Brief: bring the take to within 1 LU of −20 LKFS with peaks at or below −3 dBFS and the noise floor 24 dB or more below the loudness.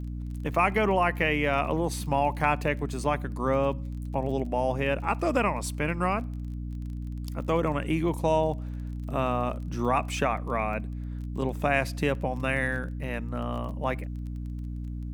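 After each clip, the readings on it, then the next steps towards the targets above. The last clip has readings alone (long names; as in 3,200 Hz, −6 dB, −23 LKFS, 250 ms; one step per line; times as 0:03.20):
crackle rate 26 per second; mains hum 60 Hz; hum harmonics up to 300 Hz; level of the hum −32 dBFS; integrated loudness −28.5 LKFS; sample peak −9.0 dBFS; target loudness −20.0 LKFS
→ click removal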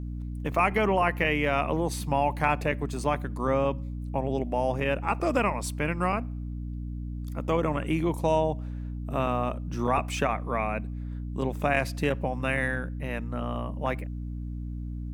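crackle rate 0.73 per second; mains hum 60 Hz; hum harmonics up to 300 Hz; level of the hum −32 dBFS
→ hum removal 60 Hz, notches 5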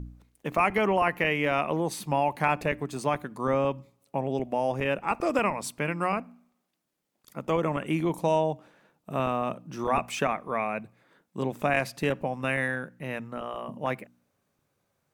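mains hum none found; integrated loudness −28.5 LKFS; sample peak −9.0 dBFS; target loudness −20.0 LKFS
→ level +8.5 dB
brickwall limiter −3 dBFS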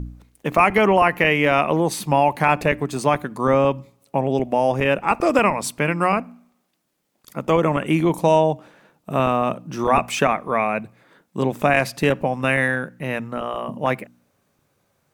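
integrated loudness −20.0 LKFS; sample peak −3.0 dBFS; background noise floor −69 dBFS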